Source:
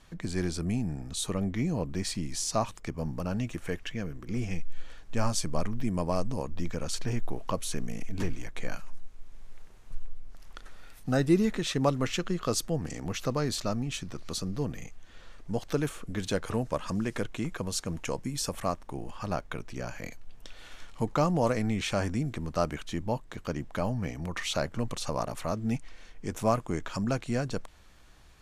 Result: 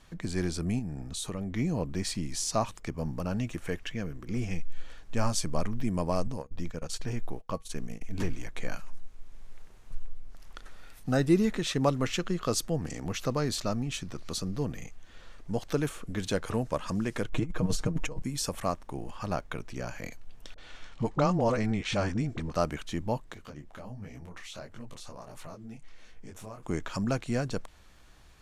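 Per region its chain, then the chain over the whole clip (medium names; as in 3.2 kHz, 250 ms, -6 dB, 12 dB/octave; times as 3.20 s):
0.79–1.54 s: compression 3:1, threshold -32 dBFS + tape noise reduction on one side only decoder only
6.27–8.11 s: gate -32 dBFS, range -24 dB + feedback comb 160 Hz, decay 0.2 s, harmonics odd, mix 30%
17.29–18.22 s: tilt EQ -2 dB/octave + comb 6.5 ms, depth 76% + compressor with a negative ratio -27 dBFS, ratio -0.5
20.54–22.54 s: low-pass 6.5 kHz + phase dispersion highs, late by 40 ms, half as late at 530 Hz
23.34–26.63 s: compression 3:1, threshold -39 dBFS + detune thickener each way 49 cents
whole clip: none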